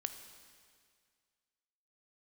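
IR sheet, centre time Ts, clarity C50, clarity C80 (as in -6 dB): 22 ms, 9.0 dB, 10.0 dB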